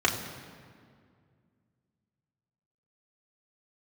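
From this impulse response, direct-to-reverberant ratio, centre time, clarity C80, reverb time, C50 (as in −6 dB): −2.0 dB, 36 ms, 8.5 dB, 2.1 s, 7.5 dB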